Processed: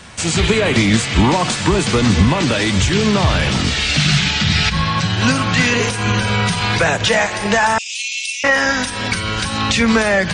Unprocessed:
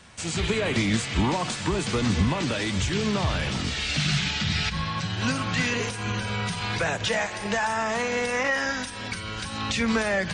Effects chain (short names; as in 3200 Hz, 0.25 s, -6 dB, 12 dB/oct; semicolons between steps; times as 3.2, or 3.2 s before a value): 7.78–8.44 steep high-pass 2400 Hz 96 dB/oct; in parallel at -1.5 dB: vocal rider within 4 dB 0.5 s; on the sum: gain +5.5 dB